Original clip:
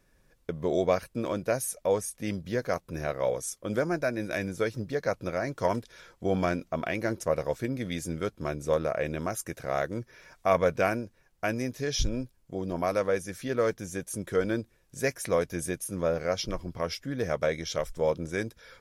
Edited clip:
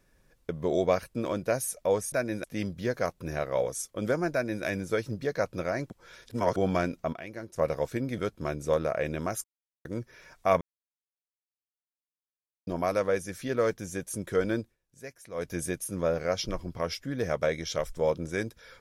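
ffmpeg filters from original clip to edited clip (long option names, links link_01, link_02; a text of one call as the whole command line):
ffmpeg -i in.wav -filter_complex "[0:a]asplit=14[link_01][link_02][link_03][link_04][link_05][link_06][link_07][link_08][link_09][link_10][link_11][link_12][link_13][link_14];[link_01]atrim=end=2.122[link_15];[link_02]atrim=start=3.998:end=4.322[link_16];[link_03]atrim=start=2.118:end=5.582[link_17];[link_04]atrim=start=5.578:end=6.242,asetpts=PTS-STARTPTS,areverse[link_18];[link_05]atrim=start=6.238:end=6.812[link_19];[link_06]atrim=start=6.808:end=7.242,asetpts=PTS-STARTPTS,volume=-10.5dB[link_20];[link_07]atrim=start=7.238:end=7.862[link_21];[link_08]atrim=start=8.178:end=9.44,asetpts=PTS-STARTPTS,afade=type=out:start_time=1.258:duration=0.004:curve=hsin[link_22];[link_09]atrim=start=9.44:end=9.85,asetpts=PTS-STARTPTS,volume=0[link_23];[link_10]atrim=start=9.85:end=10.61,asetpts=PTS-STARTPTS,afade=type=in:duration=0.004:curve=hsin,afade=type=out:start_time=0.756:duration=0.004:curve=hsin[link_24];[link_11]atrim=start=10.61:end=12.67,asetpts=PTS-STARTPTS,volume=0[link_25];[link_12]atrim=start=12.67:end=14.76,asetpts=PTS-STARTPTS,afade=type=in:duration=0.004:curve=hsin,afade=type=out:start_time=1.94:duration=0.15:silence=0.177828[link_26];[link_13]atrim=start=14.76:end=15.34,asetpts=PTS-STARTPTS,volume=-15dB[link_27];[link_14]atrim=start=15.34,asetpts=PTS-STARTPTS,afade=type=in:duration=0.15:silence=0.177828[link_28];[link_15][link_16]acrossfade=duration=0.004:curve1=hsin:curve2=hsin[link_29];[link_29][link_17]acrossfade=duration=0.004:curve1=hsin:curve2=hsin[link_30];[link_30][link_18]acrossfade=duration=0.004:curve1=hsin:curve2=hsin[link_31];[link_31][link_19]acrossfade=duration=0.004:curve1=hsin:curve2=hsin[link_32];[link_32][link_20]acrossfade=duration=0.004:curve1=hsin:curve2=hsin[link_33];[link_33][link_21]acrossfade=duration=0.004:curve1=hsin:curve2=hsin[link_34];[link_22][link_23][link_24][link_25][link_26][link_27][link_28]concat=n=7:v=0:a=1[link_35];[link_34][link_35]acrossfade=duration=0.004:curve1=hsin:curve2=hsin" out.wav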